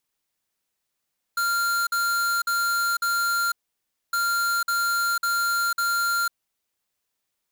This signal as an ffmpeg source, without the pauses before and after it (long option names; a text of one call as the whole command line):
ffmpeg -f lavfi -i "aevalsrc='0.0668*(2*lt(mod(1390*t,1),0.5)-1)*clip(min(mod(mod(t,2.76),0.55),0.5-mod(mod(t,2.76),0.55))/0.005,0,1)*lt(mod(t,2.76),2.2)':duration=5.52:sample_rate=44100" out.wav